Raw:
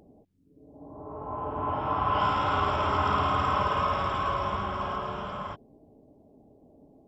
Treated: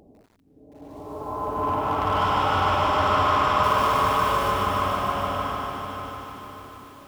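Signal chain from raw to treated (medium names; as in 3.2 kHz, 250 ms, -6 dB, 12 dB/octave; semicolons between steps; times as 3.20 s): peaking EQ 150 Hz -3 dB 0.71 oct; in parallel at -6.5 dB: wavefolder -25 dBFS; 3.63–4.52 s: on the sum: short-mantissa float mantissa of 2-bit; echo that smears into a reverb 571 ms, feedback 47%, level -8.5 dB; bit-crushed delay 150 ms, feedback 80%, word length 9-bit, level -4 dB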